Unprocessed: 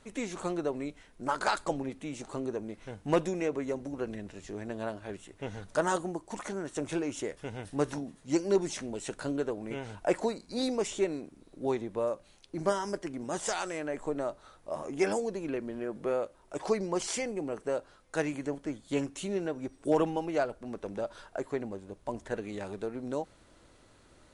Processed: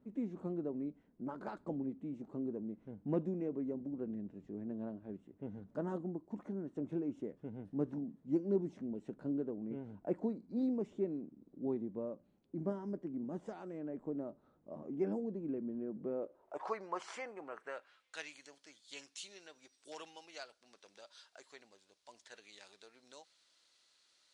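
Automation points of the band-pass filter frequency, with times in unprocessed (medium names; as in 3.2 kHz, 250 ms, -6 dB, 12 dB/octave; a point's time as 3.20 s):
band-pass filter, Q 1.8
16.12 s 220 Hz
16.68 s 1.2 kHz
17.44 s 1.2 kHz
18.38 s 4.6 kHz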